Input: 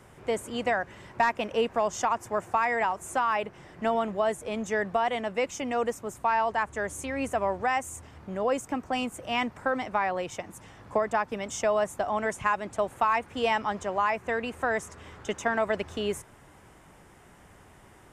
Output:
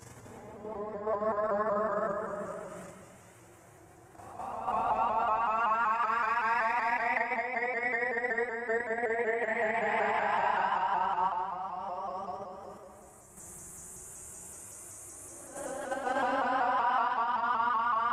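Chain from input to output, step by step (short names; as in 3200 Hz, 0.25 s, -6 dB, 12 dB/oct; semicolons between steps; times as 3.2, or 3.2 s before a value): upward compressor, threshold -34 dBFS; Paulstretch 18×, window 0.10 s, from 2.27; level quantiser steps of 9 dB; plate-style reverb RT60 1.9 s, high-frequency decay 0.65×, DRR 3 dB; shaped vibrato saw up 5.3 Hz, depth 100 cents; gain -3.5 dB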